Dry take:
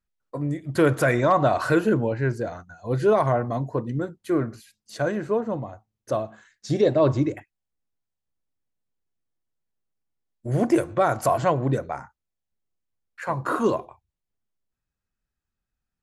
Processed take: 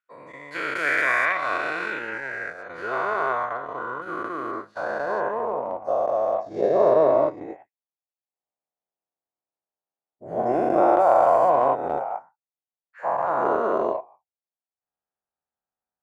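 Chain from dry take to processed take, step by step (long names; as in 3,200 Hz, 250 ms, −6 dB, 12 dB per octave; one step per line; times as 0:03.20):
every bin's largest magnitude spread in time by 480 ms
band-pass filter sweep 2,100 Hz → 750 Hz, 0:02.09–0:05.94
transient designer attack +2 dB, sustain −10 dB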